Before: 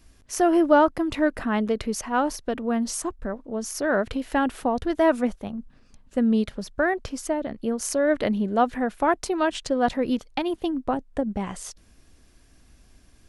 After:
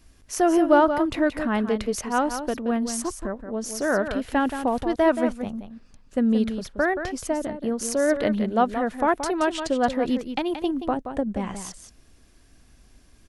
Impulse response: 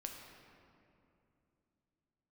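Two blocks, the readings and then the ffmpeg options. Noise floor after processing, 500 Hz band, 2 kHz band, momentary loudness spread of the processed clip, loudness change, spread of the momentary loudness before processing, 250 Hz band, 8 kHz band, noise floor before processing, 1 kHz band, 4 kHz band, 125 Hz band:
-55 dBFS, +0.5 dB, +0.5 dB, 10 LU, +0.5 dB, 10 LU, +0.5 dB, +0.5 dB, -55 dBFS, +0.5 dB, +0.5 dB, +0.5 dB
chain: -af "aecho=1:1:176:0.355"

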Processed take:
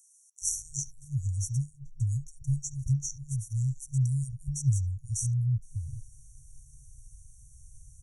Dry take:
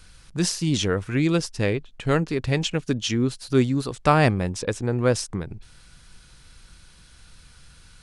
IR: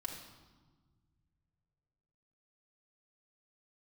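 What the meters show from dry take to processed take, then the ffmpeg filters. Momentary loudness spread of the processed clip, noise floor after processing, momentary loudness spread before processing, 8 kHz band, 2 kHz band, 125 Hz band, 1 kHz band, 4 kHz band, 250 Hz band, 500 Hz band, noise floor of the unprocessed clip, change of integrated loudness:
8 LU, -60 dBFS, 7 LU, -0.5 dB, under -40 dB, -2.0 dB, under -40 dB, under -15 dB, under -15 dB, under -40 dB, -51 dBFS, -8.0 dB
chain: -filter_complex "[0:a]acrossover=split=920|3500[s0][s1][s2];[s1]adelay=70[s3];[s0]adelay=420[s4];[s4][s3][s2]amix=inputs=3:normalize=0,afftfilt=real='re*(1-between(b*sr/4096,150,5600))':imag='im*(1-between(b*sr/4096,150,5600))':win_size=4096:overlap=0.75"

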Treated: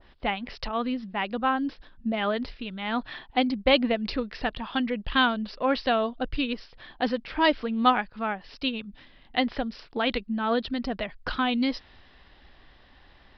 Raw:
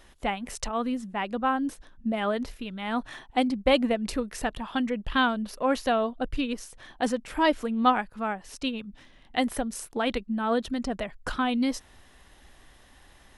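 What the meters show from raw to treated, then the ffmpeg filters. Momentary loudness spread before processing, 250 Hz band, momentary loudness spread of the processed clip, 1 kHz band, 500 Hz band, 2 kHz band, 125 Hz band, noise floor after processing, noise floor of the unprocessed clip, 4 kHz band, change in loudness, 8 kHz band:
9 LU, 0.0 dB, 10 LU, +0.5 dB, 0.0 dB, +2.5 dB, 0.0 dB, -56 dBFS, -56 dBFS, +4.5 dB, +1.0 dB, under -20 dB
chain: -af "aresample=11025,aresample=44100,adynamicequalizer=threshold=0.00891:dfrequency=1700:dqfactor=0.7:tfrequency=1700:tqfactor=0.7:attack=5:release=100:ratio=0.375:range=2.5:mode=boostabove:tftype=highshelf"

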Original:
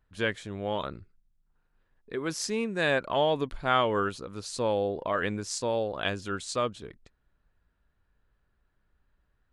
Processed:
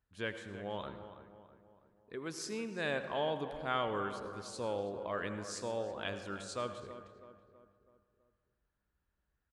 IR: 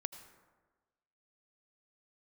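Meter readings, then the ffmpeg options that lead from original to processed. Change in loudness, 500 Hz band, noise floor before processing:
-9.0 dB, -9.0 dB, -74 dBFS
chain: -filter_complex "[0:a]highpass=41,asplit=2[s0][s1];[s1]adelay=326,lowpass=f=2000:p=1,volume=0.266,asplit=2[s2][s3];[s3]adelay=326,lowpass=f=2000:p=1,volume=0.5,asplit=2[s4][s5];[s5]adelay=326,lowpass=f=2000:p=1,volume=0.5,asplit=2[s6][s7];[s7]adelay=326,lowpass=f=2000:p=1,volume=0.5,asplit=2[s8][s9];[s9]adelay=326,lowpass=f=2000:p=1,volume=0.5[s10];[s0][s2][s4][s6][s8][s10]amix=inputs=6:normalize=0[s11];[1:a]atrim=start_sample=2205[s12];[s11][s12]afir=irnorm=-1:irlink=0,volume=0.398"

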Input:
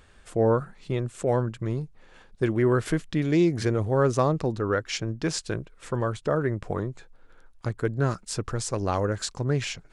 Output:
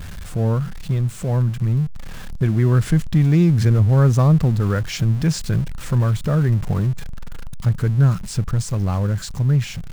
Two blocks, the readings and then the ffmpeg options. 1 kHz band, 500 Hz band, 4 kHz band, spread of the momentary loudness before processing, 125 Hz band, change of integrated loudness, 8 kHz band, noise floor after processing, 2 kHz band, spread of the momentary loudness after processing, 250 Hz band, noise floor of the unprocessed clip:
-0.5 dB, -2.5 dB, +2.0 dB, 10 LU, +13.0 dB, +7.5 dB, +2.0 dB, -32 dBFS, +1.0 dB, 9 LU, +6.0 dB, -55 dBFS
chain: -af "aeval=exprs='val(0)+0.5*0.0282*sgn(val(0))':c=same,lowshelf=f=240:t=q:w=1.5:g=10.5,dynaudnorm=f=540:g=9:m=3.76,volume=0.631"

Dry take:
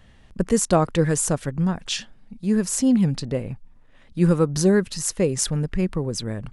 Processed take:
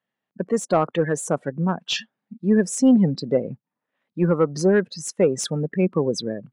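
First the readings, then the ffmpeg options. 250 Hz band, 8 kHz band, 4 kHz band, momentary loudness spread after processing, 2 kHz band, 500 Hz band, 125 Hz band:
+0.5 dB, -5.5 dB, +0.5 dB, 10 LU, +2.0 dB, +2.5 dB, -3.0 dB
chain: -filter_complex "[0:a]highpass=f=140:w=0.5412,highpass=f=140:w=1.3066,afftdn=nr=24:nf=-32,asplit=2[s0][s1];[s1]highpass=f=720:p=1,volume=5.01,asoftclip=type=tanh:threshold=0.668[s2];[s0][s2]amix=inputs=2:normalize=0,lowpass=f=1600:p=1,volume=0.501,dynaudnorm=f=180:g=5:m=3.98,volume=0.501"

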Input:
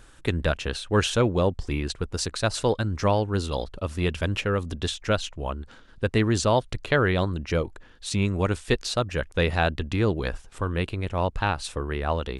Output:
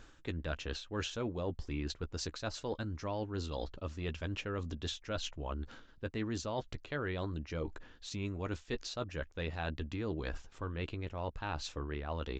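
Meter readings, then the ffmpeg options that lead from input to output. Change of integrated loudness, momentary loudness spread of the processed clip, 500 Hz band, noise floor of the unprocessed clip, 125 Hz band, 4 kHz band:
-13.5 dB, 4 LU, -14.5 dB, -50 dBFS, -13.5 dB, -12.0 dB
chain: -filter_complex "[0:a]aresample=16000,aresample=44100,asplit=2[s0][s1];[s1]adelay=13,volume=0.266[s2];[s0][s2]amix=inputs=2:normalize=0,areverse,acompressor=threshold=0.0224:ratio=4,areverse,equalizer=f=290:w=4.6:g=4,volume=0.631"

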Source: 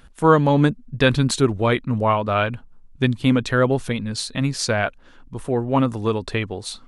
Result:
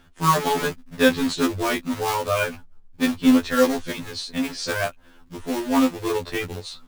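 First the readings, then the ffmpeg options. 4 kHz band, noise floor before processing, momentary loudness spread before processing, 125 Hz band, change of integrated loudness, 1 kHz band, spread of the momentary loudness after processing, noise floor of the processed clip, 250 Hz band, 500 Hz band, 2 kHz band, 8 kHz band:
-1.0 dB, -48 dBFS, 9 LU, -12.0 dB, -2.5 dB, -2.0 dB, 11 LU, -51 dBFS, -0.5 dB, -3.5 dB, -1.0 dB, -0.5 dB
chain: -filter_complex "[0:a]lowpass=5600,acrossover=split=100|2800[s0][s1][s2];[s1]acrusher=bits=2:mode=log:mix=0:aa=0.000001[s3];[s0][s3][s2]amix=inputs=3:normalize=0,afftfilt=real='re*2*eq(mod(b,4),0)':imag='im*2*eq(mod(b,4),0)':win_size=2048:overlap=0.75"

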